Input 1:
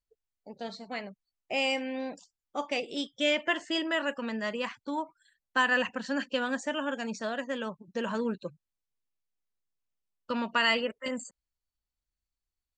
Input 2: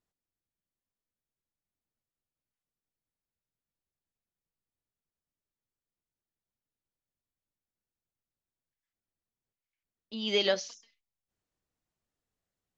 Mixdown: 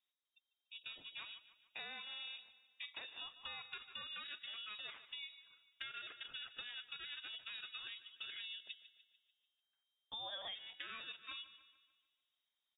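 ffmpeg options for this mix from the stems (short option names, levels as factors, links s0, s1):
-filter_complex "[0:a]acompressor=threshold=0.0158:ratio=2,aeval=exprs='val(0)*sin(2*PI*640*n/s)':c=same,adelay=250,volume=0.596,asplit=2[s0][s1];[s1]volume=0.133[s2];[1:a]alimiter=limit=0.0944:level=0:latency=1:release=13,volume=0.891[s3];[s2]aecho=0:1:147|294|441|588|735|882|1029:1|0.49|0.24|0.118|0.0576|0.0282|0.0138[s4];[s0][s3][s4]amix=inputs=3:normalize=0,lowpass=f=3200:t=q:w=0.5098,lowpass=f=3200:t=q:w=0.6013,lowpass=f=3200:t=q:w=0.9,lowpass=f=3200:t=q:w=2.563,afreqshift=-3800,acompressor=threshold=0.00562:ratio=6"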